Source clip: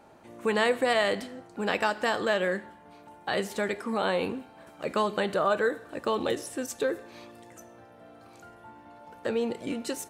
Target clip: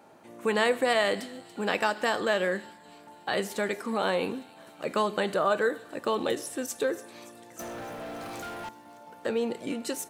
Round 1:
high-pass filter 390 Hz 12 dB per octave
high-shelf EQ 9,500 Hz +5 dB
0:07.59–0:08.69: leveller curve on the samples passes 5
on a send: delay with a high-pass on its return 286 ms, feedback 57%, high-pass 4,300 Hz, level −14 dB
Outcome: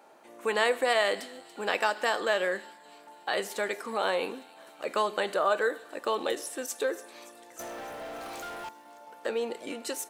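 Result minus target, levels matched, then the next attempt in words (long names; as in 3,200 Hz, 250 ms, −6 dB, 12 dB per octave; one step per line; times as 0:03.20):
125 Hz band −10.5 dB
high-pass filter 130 Hz 12 dB per octave
high-shelf EQ 9,500 Hz +5 dB
0:07.59–0:08.69: leveller curve on the samples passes 5
on a send: delay with a high-pass on its return 286 ms, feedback 57%, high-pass 4,300 Hz, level −14 dB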